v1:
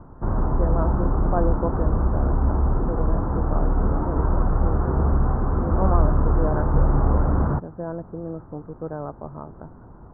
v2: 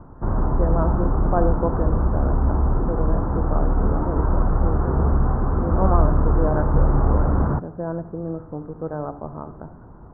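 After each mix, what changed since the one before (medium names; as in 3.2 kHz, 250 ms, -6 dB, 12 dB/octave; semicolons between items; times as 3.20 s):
reverb: on, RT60 0.35 s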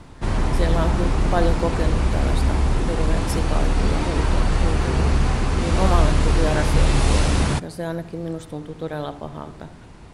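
master: remove steep low-pass 1.4 kHz 48 dB/octave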